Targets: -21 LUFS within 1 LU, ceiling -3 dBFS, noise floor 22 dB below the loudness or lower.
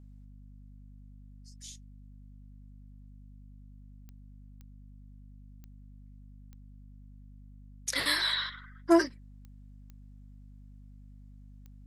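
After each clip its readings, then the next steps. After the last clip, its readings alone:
clicks 8; hum 50 Hz; harmonics up to 250 Hz; hum level -48 dBFS; loudness -28.5 LUFS; peak -11.0 dBFS; loudness target -21.0 LUFS
-> de-click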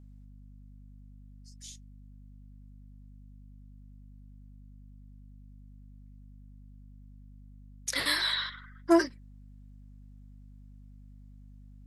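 clicks 0; hum 50 Hz; harmonics up to 250 Hz; hum level -48 dBFS
-> de-hum 50 Hz, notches 5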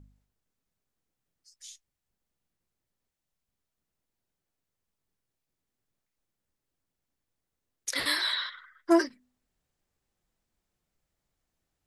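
hum none; loudness -28.5 LUFS; peak -11.0 dBFS; loudness target -21.0 LUFS
-> gain +7.5 dB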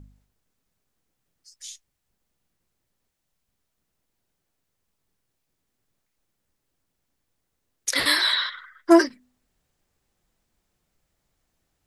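loudness -21.0 LUFS; peak -3.5 dBFS; noise floor -78 dBFS

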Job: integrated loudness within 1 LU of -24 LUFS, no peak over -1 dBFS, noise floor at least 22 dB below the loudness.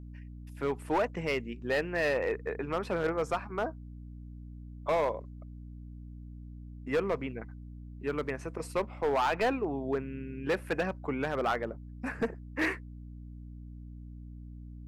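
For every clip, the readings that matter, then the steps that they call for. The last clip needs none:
clipped 1.4%; flat tops at -23.0 dBFS; hum 60 Hz; harmonics up to 300 Hz; hum level -43 dBFS; loudness -32.5 LUFS; peak -23.0 dBFS; loudness target -24.0 LUFS
-> clip repair -23 dBFS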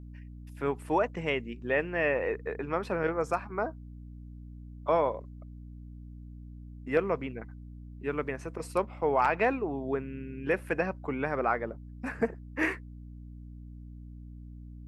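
clipped 0.0%; hum 60 Hz; harmonics up to 300 Hz; hum level -43 dBFS
-> de-hum 60 Hz, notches 5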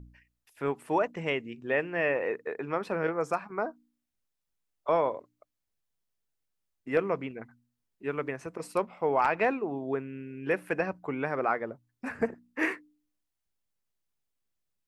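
hum none; loudness -31.5 LUFS; peak -14.0 dBFS; loudness target -24.0 LUFS
-> gain +7.5 dB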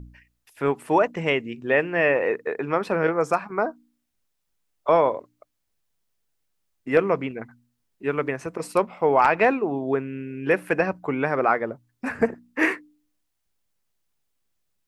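loudness -24.0 LUFS; peak -6.5 dBFS; noise floor -76 dBFS

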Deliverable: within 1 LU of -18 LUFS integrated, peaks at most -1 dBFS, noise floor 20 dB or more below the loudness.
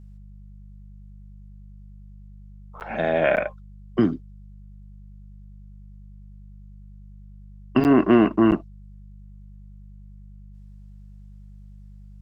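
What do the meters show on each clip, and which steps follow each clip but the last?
dropouts 4; longest dropout 9.3 ms; hum 50 Hz; harmonics up to 200 Hz; hum level -41 dBFS; loudness -21.0 LUFS; peak -5.0 dBFS; loudness target -18.0 LUFS
-> interpolate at 2.8/3.36/7.84/8.51, 9.3 ms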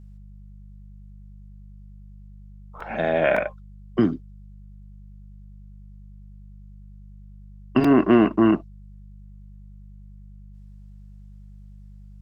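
dropouts 0; hum 50 Hz; harmonics up to 200 Hz; hum level -41 dBFS
-> de-hum 50 Hz, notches 4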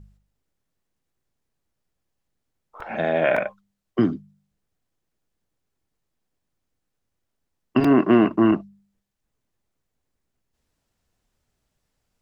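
hum none; loudness -20.5 LUFS; peak -5.5 dBFS; loudness target -18.0 LUFS
-> gain +2.5 dB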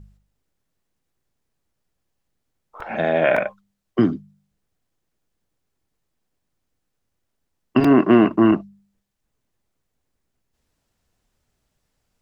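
loudness -18.0 LUFS; peak -3.0 dBFS; noise floor -77 dBFS

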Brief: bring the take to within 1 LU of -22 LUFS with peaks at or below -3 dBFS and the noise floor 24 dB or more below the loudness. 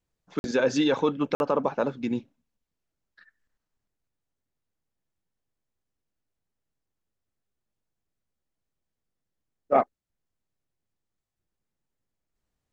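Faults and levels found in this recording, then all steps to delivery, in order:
dropouts 2; longest dropout 51 ms; loudness -26.5 LUFS; peak -8.5 dBFS; loudness target -22.0 LUFS
-> interpolate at 0.39/1.35, 51 ms; gain +4.5 dB

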